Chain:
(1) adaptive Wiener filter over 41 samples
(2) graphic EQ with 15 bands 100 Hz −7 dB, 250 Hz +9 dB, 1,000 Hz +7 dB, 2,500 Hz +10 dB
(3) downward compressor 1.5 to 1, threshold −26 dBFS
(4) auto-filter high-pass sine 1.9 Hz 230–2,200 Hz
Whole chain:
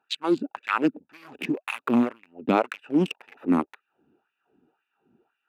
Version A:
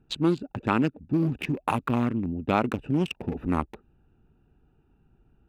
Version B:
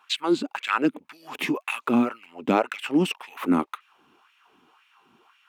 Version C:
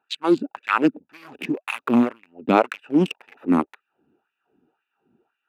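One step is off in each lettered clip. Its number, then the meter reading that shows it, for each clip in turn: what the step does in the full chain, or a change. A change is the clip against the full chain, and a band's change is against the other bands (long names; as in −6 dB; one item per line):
4, 125 Hz band +10.5 dB
1, 4 kHz band +4.0 dB
3, average gain reduction 2.5 dB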